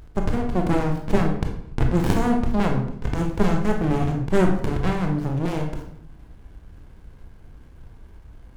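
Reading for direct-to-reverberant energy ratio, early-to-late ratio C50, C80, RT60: 2.0 dB, 5.5 dB, 9.5 dB, 0.70 s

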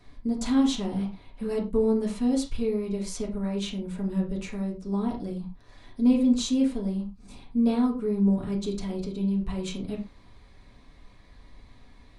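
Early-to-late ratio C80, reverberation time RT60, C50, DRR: 14.0 dB, no single decay rate, 9.0 dB, -3.0 dB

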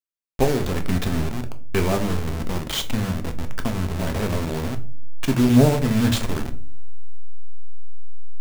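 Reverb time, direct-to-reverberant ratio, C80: 0.45 s, 6.5 dB, 20.0 dB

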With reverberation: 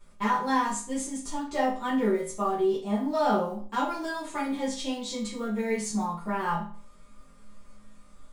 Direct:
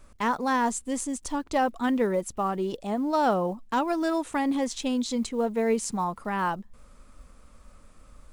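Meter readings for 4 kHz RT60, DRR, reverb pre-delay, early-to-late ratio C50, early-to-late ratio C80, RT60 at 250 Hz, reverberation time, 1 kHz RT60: 0.40 s, -9.0 dB, 5 ms, 6.0 dB, 11.0 dB, 0.40 s, 0.40 s, 0.40 s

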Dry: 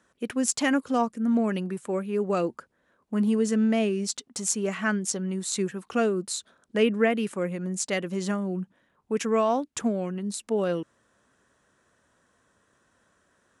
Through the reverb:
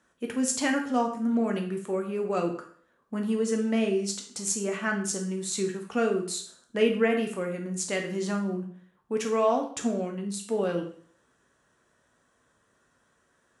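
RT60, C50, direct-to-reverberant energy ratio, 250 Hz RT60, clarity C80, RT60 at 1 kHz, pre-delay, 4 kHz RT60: 0.55 s, 8.0 dB, 2.5 dB, 0.55 s, 12.0 dB, 0.50 s, 5 ms, 0.50 s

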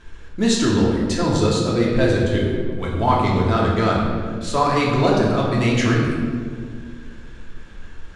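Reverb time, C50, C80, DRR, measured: 1.9 s, 1.0 dB, 2.5 dB, -4.5 dB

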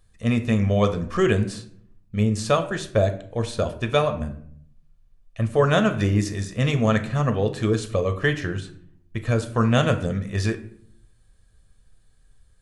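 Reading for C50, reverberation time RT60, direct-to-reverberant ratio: 13.0 dB, 0.65 s, 7.0 dB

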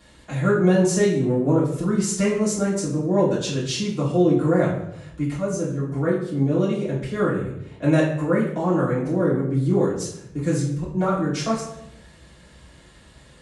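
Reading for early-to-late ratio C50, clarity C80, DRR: 5.0 dB, 8.0 dB, -9.0 dB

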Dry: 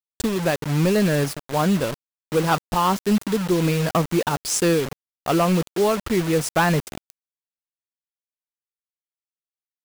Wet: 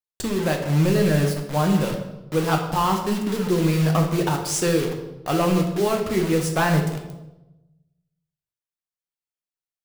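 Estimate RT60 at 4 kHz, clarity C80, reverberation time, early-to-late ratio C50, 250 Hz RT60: 0.75 s, 9.0 dB, 1.0 s, 6.5 dB, 1.1 s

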